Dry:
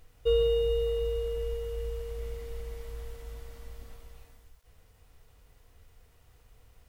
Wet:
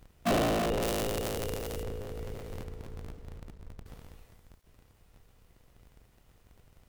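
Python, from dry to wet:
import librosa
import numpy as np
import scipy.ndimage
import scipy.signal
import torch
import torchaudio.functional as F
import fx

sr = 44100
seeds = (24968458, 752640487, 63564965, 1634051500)

y = fx.cycle_switch(x, sr, every=2, mode='inverted')
y = fx.high_shelf(y, sr, hz=3500.0, db=12.0, at=(0.82, 1.83))
y = fx.backlash(y, sr, play_db=-42.0, at=(2.64, 3.86))
y = y * librosa.db_to_amplitude(-2.5)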